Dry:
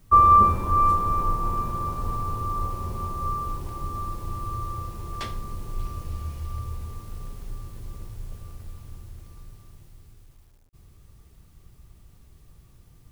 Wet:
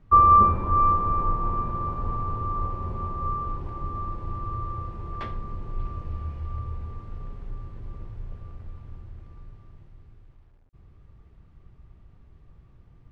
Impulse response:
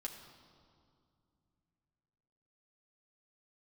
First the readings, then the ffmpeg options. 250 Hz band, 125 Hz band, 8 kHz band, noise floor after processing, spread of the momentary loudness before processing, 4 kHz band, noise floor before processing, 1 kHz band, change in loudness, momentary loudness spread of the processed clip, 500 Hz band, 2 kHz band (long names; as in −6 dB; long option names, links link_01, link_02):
0.0 dB, 0.0 dB, below −20 dB, −54 dBFS, 21 LU, −11.0 dB, −54 dBFS, −0.5 dB, −0.5 dB, 21 LU, 0.0 dB, −3.0 dB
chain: -af "lowpass=2000"